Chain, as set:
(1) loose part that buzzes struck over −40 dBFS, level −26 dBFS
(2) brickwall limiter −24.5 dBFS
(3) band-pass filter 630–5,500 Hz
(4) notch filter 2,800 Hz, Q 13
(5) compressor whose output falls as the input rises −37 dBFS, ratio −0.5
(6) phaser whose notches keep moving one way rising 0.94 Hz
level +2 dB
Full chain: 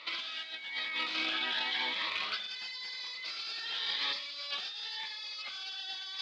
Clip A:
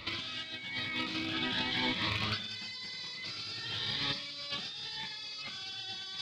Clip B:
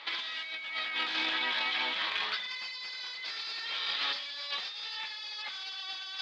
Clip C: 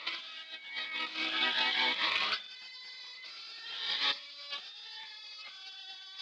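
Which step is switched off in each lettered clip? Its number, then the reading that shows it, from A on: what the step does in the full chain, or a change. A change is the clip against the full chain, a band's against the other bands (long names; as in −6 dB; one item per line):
3, 250 Hz band +12.0 dB
6, 8 kHz band −2.0 dB
2, average gain reduction 4.0 dB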